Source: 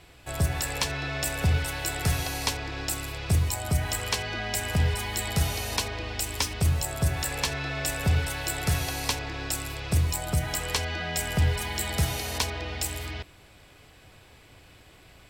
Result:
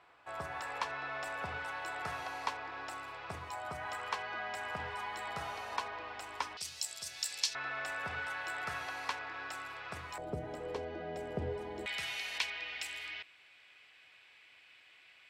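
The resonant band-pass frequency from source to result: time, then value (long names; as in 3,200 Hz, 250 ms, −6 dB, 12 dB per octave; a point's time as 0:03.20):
resonant band-pass, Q 1.9
1,100 Hz
from 0:06.57 5,200 Hz
from 0:07.55 1,300 Hz
from 0:10.18 420 Hz
from 0:11.86 2,400 Hz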